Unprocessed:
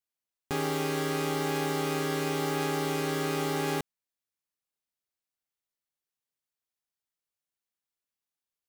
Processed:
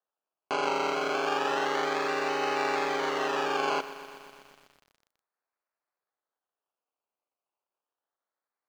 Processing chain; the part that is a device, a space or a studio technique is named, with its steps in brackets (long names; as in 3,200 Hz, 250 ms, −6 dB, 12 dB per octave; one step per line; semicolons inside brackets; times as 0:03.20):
bass and treble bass −2 dB, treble −9 dB
circuit-bent sampling toy (sample-and-hold swept by an LFO 19×, swing 60% 0.31 Hz; loudspeaker in its box 570–5,400 Hz, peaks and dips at 2,100 Hz −3 dB, 3,600 Hz −7 dB, 5,200 Hz −6 dB)
feedback echo at a low word length 123 ms, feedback 80%, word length 9 bits, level −15 dB
level +7 dB